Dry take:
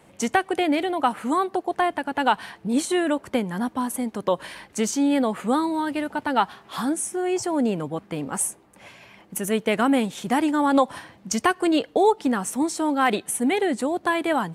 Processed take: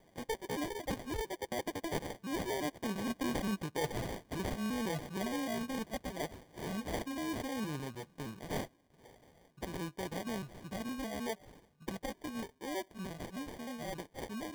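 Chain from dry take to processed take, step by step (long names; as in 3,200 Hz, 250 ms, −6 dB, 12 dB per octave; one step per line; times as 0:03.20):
pitch shifter gated in a rhythm −2.5 semitones, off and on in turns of 134 ms
source passing by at 0:03.26, 53 m/s, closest 11 metres
high-shelf EQ 3,100 Hz +9 dB
reversed playback
downward compressor 8 to 1, threshold −47 dBFS, peak gain reduction 25 dB
reversed playback
decimation without filtering 33×
level +13 dB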